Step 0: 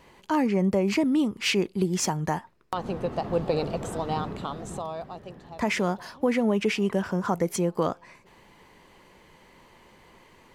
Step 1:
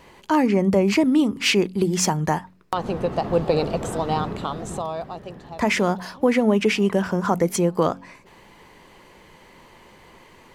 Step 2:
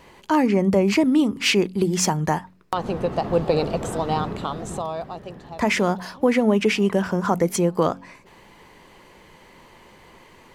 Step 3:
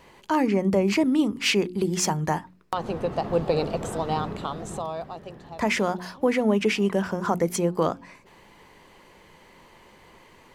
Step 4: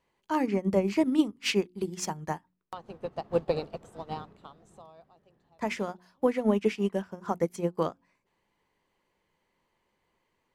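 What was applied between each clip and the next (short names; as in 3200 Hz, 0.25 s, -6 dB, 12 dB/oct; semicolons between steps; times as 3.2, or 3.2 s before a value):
de-hum 46.13 Hz, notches 6; gain +5.5 dB
nothing audible
notches 60/120/180/240/300/360 Hz; gain -3 dB
upward expander 2.5:1, over -33 dBFS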